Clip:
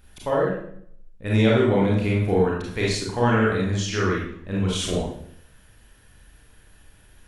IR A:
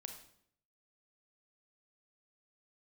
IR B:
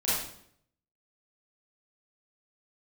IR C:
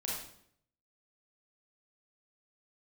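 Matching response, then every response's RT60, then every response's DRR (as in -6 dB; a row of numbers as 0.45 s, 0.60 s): C; 0.65 s, 0.65 s, 0.65 s; 4.5 dB, -11.0 dB, -5.0 dB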